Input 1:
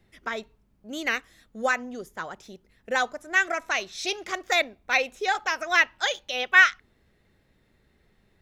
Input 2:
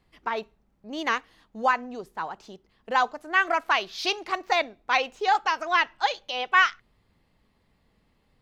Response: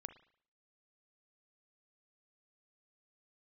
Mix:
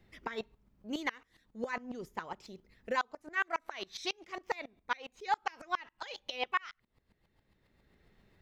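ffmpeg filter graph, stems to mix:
-filter_complex "[0:a]equalizer=f=9.7k:w=1.1:g=-7.5,acompressor=threshold=-29dB:ratio=5,volume=-1.5dB[a];[1:a]aeval=exprs='val(0)*pow(10,-39*if(lt(mod(-7.3*n/s,1),2*abs(-7.3)/1000),1-mod(-7.3*n/s,1)/(2*abs(-7.3)/1000),(mod(-7.3*n/s,1)-2*abs(-7.3)/1000)/(1-2*abs(-7.3)/1000))/20)':c=same,volume=1dB,asplit=2[b][c];[c]apad=whole_len=371059[d];[a][d]sidechaincompress=threshold=-38dB:ratio=6:attack=16:release=1090[e];[e][b]amix=inputs=2:normalize=0,alimiter=limit=-20.5dB:level=0:latency=1:release=437"

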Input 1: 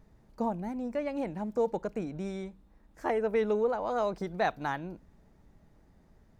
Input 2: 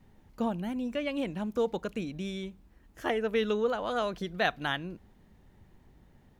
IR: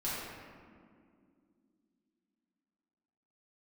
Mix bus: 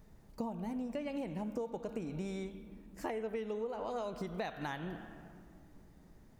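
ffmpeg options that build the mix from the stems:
-filter_complex "[0:a]highshelf=f=5.8k:g=9,volume=-0.5dB[a];[1:a]volume=-14.5dB,asplit=2[b][c];[c]volume=-3.5dB[d];[2:a]atrim=start_sample=2205[e];[d][e]afir=irnorm=-1:irlink=0[f];[a][b][f]amix=inputs=3:normalize=0,acompressor=threshold=-35dB:ratio=12"

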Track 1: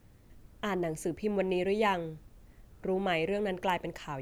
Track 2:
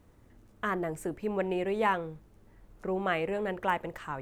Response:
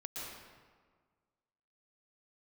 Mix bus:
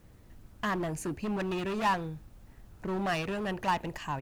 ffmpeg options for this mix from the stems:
-filter_complex "[0:a]volume=30.5dB,asoftclip=hard,volume=-30.5dB,volume=2dB[a];[1:a]adelay=1.2,volume=-4.5dB[b];[a][b]amix=inputs=2:normalize=0"

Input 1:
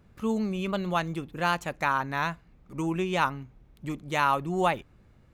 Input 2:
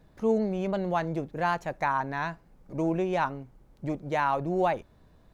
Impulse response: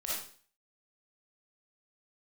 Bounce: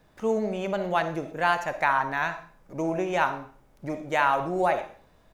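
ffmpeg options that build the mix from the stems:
-filter_complex "[0:a]highpass=f=1.2k:w=0.5412,highpass=f=1.2k:w=1.3066,volume=-7dB[a];[1:a]lowshelf=f=400:g=-9.5,bandreject=f=4.2k:w=12,volume=-1,adelay=0.8,volume=3dB,asplit=2[b][c];[c]volume=-9dB[d];[2:a]atrim=start_sample=2205[e];[d][e]afir=irnorm=-1:irlink=0[f];[a][b][f]amix=inputs=3:normalize=0"

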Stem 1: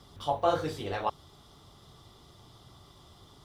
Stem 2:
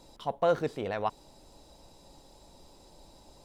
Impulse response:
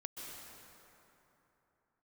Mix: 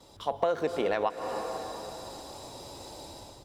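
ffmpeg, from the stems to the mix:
-filter_complex "[0:a]asubboost=boost=5.5:cutoff=170,volume=-7.5dB[a];[1:a]highpass=260,dynaudnorm=f=160:g=5:m=12dB,volume=-1,adelay=3.8,volume=-1dB,asplit=2[b][c];[c]volume=-6.5dB[d];[2:a]atrim=start_sample=2205[e];[d][e]afir=irnorm=-1:irlink=0[f];[a][b][f]amix=inputs=3:normalize=0,acompressor=threshold=-24dB:ratio=10"

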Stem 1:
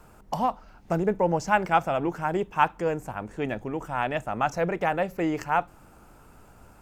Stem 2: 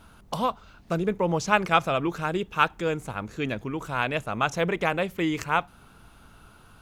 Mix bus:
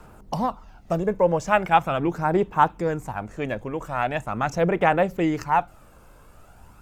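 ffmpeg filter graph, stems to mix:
-filter_complex "[0:a]aphaser=in_gain=1:out_gain=1:delay=1.9:decay=0.46:speed=0.41:type=sinusoidal,volume=0dB[a];[1:a]volume=-10.5dB[b];[a][b]amix=inputs=2:normalize=0"

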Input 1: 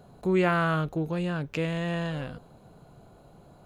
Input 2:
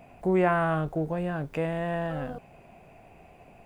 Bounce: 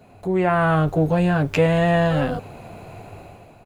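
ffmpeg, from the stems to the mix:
-filter_complex "[0:a]highpass=230,acompressor=threshold=-35dB:ratio=6,volume=1.5dB[a];[1:a]adelay=10,volume=-1dB[b];[a][b]amix=inputs=2:normalize=0,dynaudnorm=f=230:g=5:m=11dB,equalizer=f=100:t=o:w=0.32:g=13.5"

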